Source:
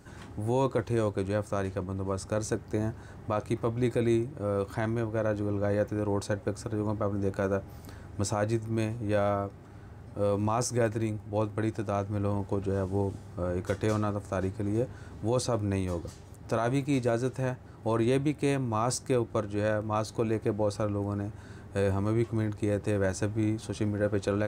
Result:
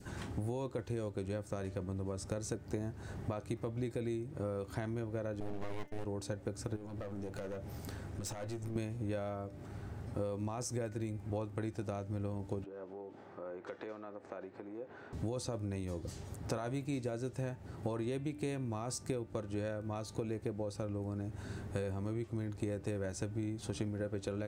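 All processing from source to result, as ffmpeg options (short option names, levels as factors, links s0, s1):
-filter_complex "[0:a]asettb=1/sr,asplit=3[s0][s1][s2];[s0]atrim=end=5.404[s3];[s1]atrim=start=5.4:end=6.05,asetpts=PTS-STARTPTS,afade=t=in:d=0.004:c=qsin,afade=t=out:st=0.646:d=0.004:c=qsin,agate=range=0.0224:threshold=0.0251:ratio=3:release=100:detection=peak,aeval=exprs='abs(val(0))':c=same[s4];[s2]atrim=start=6.046[s5];[s3][s4]acrossfade=d=0.004:c1=hsin:c2=qsin[s6];[s6][s5]acrossfade=d=0.004:c1=qsin:c2=hsin,asettb=1/sr,asplit=3[s7][s8][s9];[s7]atrim=end=6.764[s10];[s8]atrim=start=6.76:end=8.76,asetpts=PTS-STARTPTS,afade=t=in:d=0.004:c=qsin,afade=t=out:st=1.996:d=0.004:c=qsin,highpass=f=58:p=1,acompressor=threshold=0.0141:ratio=4:attack=3.2:release=140:knee=1:detection=peak,aeval=exprs='clip(val(0),-1,0.00708)':c=same[s11];[s9]atrim=start=8.756[s12];[s10][s11]acrossfade=d=0.004:c1=hsin:c2=qsin[s13];[s13][s12]acrossfade=d=0.004:c1=qsin:c2=hsin,asettb=1/sr,asplit=3[s14][s15][s16];[s14]atrim=end=12.644[s17];[s15]atrim=start=12.64:end=15.13,asetpts=PTS-STARTPTS,afade=t=in:d=0.004:c=qsin,afade=t=out:st=2.486:d=0.004:c=qsin,acompressor=threshold=0.0141:ratio=10:attack=3.2:release=140:knee=1:detection=peak,highpass=390,lowpass=2200[s18];[s16]atrim=start=15.126[s19];[s17][s18]acrossfade=d=0.004:c1=hsin:c2=qsin[s20];[s20][s19]acrossfade=d=0.004:c1=qsin:c2=hsin,bandreject=f=296.3:t=h:w=4,bandreject=f=592.6:t=h:w=4,bandreject=f=888.9:t=h:w=4,bandreject=f=1185.2:t=h:w=4,bandreject=f=1481.5:t=h:w=4,bandreject=f=1777.8:t=h:w=4,bandreject=f=2074.1:t=h:w=4,bandreject=f=2370.4:t=h:w=4,bandreject=f=2666.7:t=h:w=4,bandreject=f=2963:t=h:w=4,bandreject=f=3259.3:t=h:w=4,acompressor=threshold=0.0158:ratio=12,adynamicequalizer=threshold=0.001:dfrequency=1100:dqfactor=1.3:tfrequency=1100:tqfactor=1.3:attack=5:release=100:ratio=0.375:range=3.5:mode=cutabove:tftype=bell,volume=1.33"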